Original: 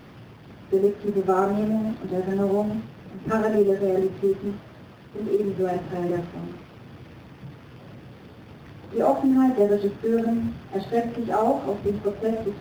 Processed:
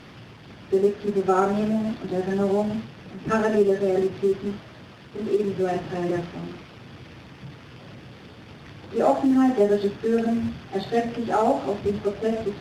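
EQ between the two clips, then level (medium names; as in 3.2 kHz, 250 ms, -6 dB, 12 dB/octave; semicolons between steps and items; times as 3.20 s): distance through air 57 m; treble shelf 2.2 kHz +11 dB; 0.0 dB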